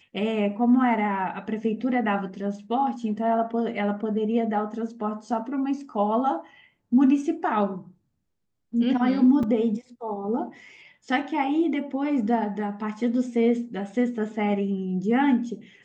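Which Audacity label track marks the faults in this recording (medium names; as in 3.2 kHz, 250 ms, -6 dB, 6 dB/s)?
9.430000	9.430000	dropout 4.3 ms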